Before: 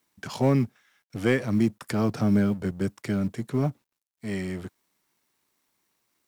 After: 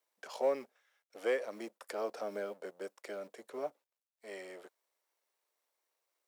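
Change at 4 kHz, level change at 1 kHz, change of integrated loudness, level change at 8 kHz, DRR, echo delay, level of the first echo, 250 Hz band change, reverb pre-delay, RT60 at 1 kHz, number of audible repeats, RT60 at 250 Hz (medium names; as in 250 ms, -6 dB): -11.0 dB, -7.5 dB, -13.0 dB, -11.0 dB, no reverb, no echo, no echo, -25.0 dB, no reverb, no reverb, no echo, no reverb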